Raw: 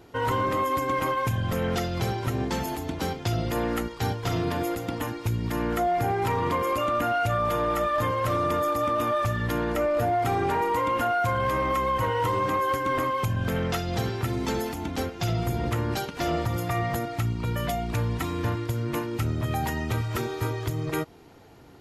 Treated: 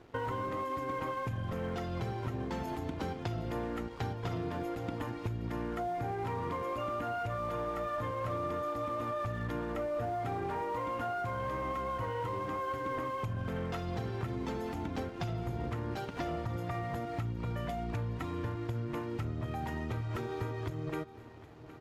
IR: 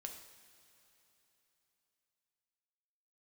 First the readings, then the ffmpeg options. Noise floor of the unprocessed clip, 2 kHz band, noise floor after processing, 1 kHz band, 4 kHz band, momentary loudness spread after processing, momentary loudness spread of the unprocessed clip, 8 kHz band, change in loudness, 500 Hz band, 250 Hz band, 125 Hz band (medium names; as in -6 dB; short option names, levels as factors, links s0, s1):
-40 dBFS, -11.5 dB, -45 dBFS, -10.5 dB, -13.5 dB, 2 LU, 5 LU, -18.0 dB, -9.5 dB, -9.5 dB, -8.5 dB, -9.0 dB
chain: -filter_complex "[0:a]lowpass=f=2000:p=1,acompressor=threshold=0.0224:ratio=6,aeval=exprs='sgn(val(0))*max(abs(val(0))-0.00158,0)':c=same,asplit=2[s0][s1];[s1]aecho=0:1:765|1530|2295|3060|3825:0.141|0.0791|0.0443|0.0248|0.0139[s2];[s0][s2]amix=inputs=2:normalize=0"